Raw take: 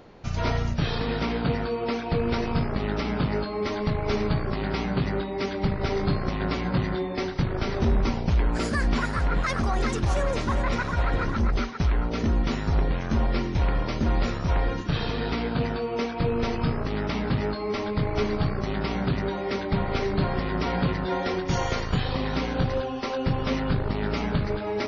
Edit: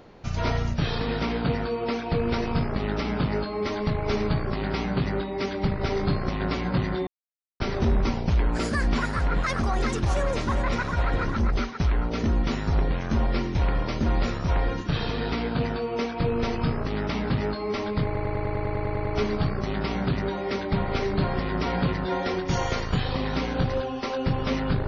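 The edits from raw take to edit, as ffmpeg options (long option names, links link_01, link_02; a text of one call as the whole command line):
ffmpeg -i in.wav -filter_complex "[0:a]asplit=13[link_01][link_02][link_03][link_04][link_05][link_06][link_07][link_08][link_09][link_10][link_11][link_12][link_13];[link_01]atrim=end=7.07,asetpts=PTS-STARTPTS,afade=type=out:start_time=7.066:duration=0.004:curve=hsin[link_14];[link_02]atrim=start=7.07:end=7.6,asetpts=PTS-STARTPTS,volume=0[link_15];[link_03]atrim=start=7.6:end=18.152,asetpts=PTS-STARTPTS,afade=type=in:duration=0.004:curve=hsin[link_16];[link_04]atrim=start=18.048:end=18.152[link_17];[link_05]atrim=start=18.048:end=18.152[link_18];[link_06]atrim=start=18.048:end=18.152[link_19];[link_07]atrim=start=18.048:end=18.152[link_20];[link_08]atrim=start=18.048:end=18.152[link_21];[link_09]atrim=start=18.048:end=18.152[link_22];[link_10]atrim=start=18.048:end=18.152[link_23];[link_11]atrim=start=18.048:end=18.152[link_24];[link_12]atrim=start=18.048:end=18.152[link_25];[link_13]atrim=start=18.048[link_26];[link_14][link_15][link_16]concat=n=3:v=0:a=1[link_27];[link_27][link_17]acrossfade=duration=0.004:curve1=hsin:curve2=hsin[link_28];[link_28][link_18]acrossfade=duration=0.004:curve1=hsin:curve2=hsin[link_29];[link_29][link_19]acrossfade=duration=0.004:curve1=hsin:curve2=hsin[link_30];[link_30][link_20]acrossfade=duration=0.004:curve1=hsin:curve2=hsin[link_31];[link_31][link_21]acrossfade=duration=0.004:curve1=hsin:curve2=hsin[link_32];[link_32][link_22]acrossfade=duration=0.004:curve1=hsin:curve2=hsin[link_33];[link_33][link_23]acrossfade=duration=0.004:curve1=hsin:curve2=hsin[link_34];[link_34][link_24]acrossfade=duration=0.004:curve1=hsin:curve2=hsin[link_35];[link_35][link_25]acrossfade=duration=0.004:curve1=hsin:curve2=hsin[link_36];[link_36][link_26]acrossfade=duration=0.004:curve1=hsin:curve2=hsin" out.wav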